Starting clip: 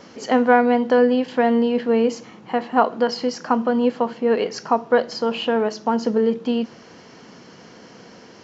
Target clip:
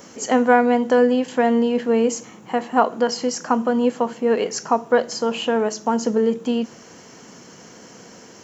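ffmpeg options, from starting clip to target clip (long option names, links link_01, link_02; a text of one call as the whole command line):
ffmpeg -i in.wav -af "aexciter=amount=9.4:drive=3.1:freq=6600" out.wav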